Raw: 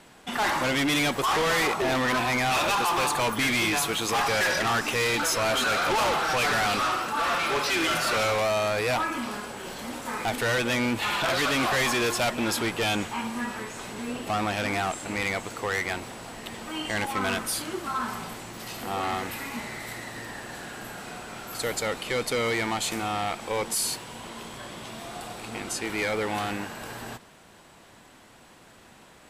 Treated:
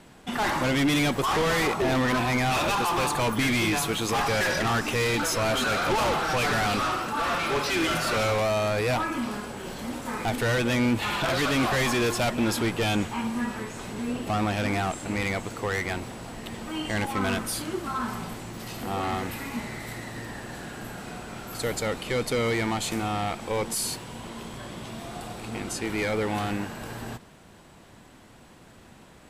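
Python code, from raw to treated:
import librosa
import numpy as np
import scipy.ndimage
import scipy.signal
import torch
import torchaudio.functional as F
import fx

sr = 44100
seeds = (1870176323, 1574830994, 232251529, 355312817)

y = fx.low_shelf(x, sr, hz=340.0, db=9.0)
y = y * librosa.db_to_amplitude(-2.0)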